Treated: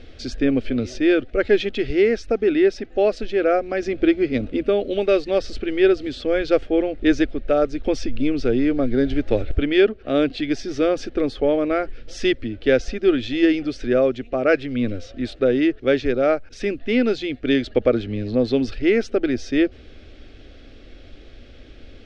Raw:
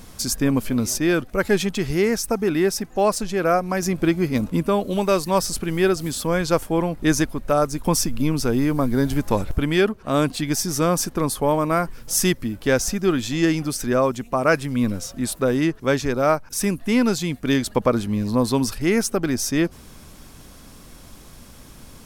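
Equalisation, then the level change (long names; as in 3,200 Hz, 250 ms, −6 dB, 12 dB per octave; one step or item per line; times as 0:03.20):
low-pass filter 3,600 Hz 24 dB per octave
phaser with its sweep stopped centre 410 Hz, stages 4
+4.0 dB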